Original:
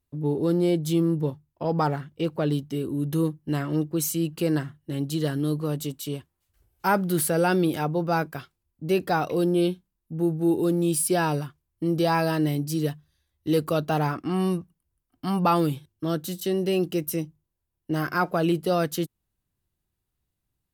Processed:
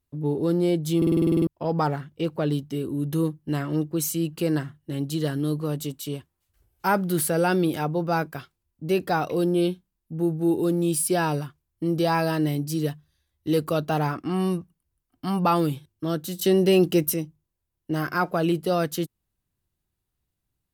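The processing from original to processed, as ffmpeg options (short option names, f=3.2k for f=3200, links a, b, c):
-filter_complex "[0:a]asettb=1/sr,asplit=3[a][b][c];[a]atrim=end=16.394[d];[b]atrim=start=16.39:end=17.14,asetpts=PTS-STARTPTS,afade=t=in:d=0.004:c=qsin,afade=t=out:st=0.746:d=0.004:c=qsin,acontrast=53[e];[c]atrim=start=17.136[f];[d][e]acrossfade=d=0.004:c1=hsin:c2=qsin[g];[g][f]acrossfade=d=0.004:c1=qsin:c2=hsin,asplit=11[h][i][j][k][l][m][n][o][p][q][r];[h]atrim=end=1.022[s];[i]atrim=start=0.968:end=1.022[t];[j]atrim=start=0.968:end=1.022[u];[k]atrim=start=0.968:end=1.022[v];[l]atrim=start=0.968:end=1.022[w];[m]atrim=start=0.968:end=1.022[x];[n]atrim=start=0.968:end=1.022[y];[o]atrim=start=0.968:end=1.022[z];[p]atrim=start=0.968:end=1.022[aa];[q]atrim=start=0.968:end=1.022[ab];[r]atrim=start=1.468[ac];[s][t]acrossfade=d=0.004:c1=hsin:c2=hsin[ad];[ad][u]acrossfade=d=0.004:c1=hsin:c2=hsin[ae];[ae][v]acrossfade=d=0.004:c1=hsin:c2=hsin[af];[af][w]acrossfade=d=0.004:c1=hsin:c2=hsin[ag];[ag][x]acrossfade=d=0.004:c1=hsin:c2=hsin[ah];[ah][y]acrossfade=d=0.004:c1=hsin:c2=hsin[ai];[ai][z]acrossfade=d=0.004:c1=hsin:c2=hsin[aj];[aj][aa]acrossfade=d=0.004:c1=hsin:c2=hsin[ak];[ak][ab]acrossfade=d=0.004:c1=hsin:c2=hsin[al];[al][ac]acrossfade=d=0.004:c1=hsin:c2=hsin"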